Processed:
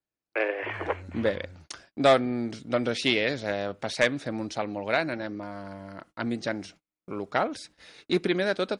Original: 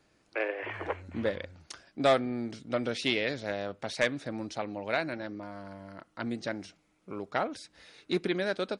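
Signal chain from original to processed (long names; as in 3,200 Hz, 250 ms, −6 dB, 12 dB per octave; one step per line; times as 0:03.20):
noise gate −55 dBFS, range −31 dB
level +4.5 dB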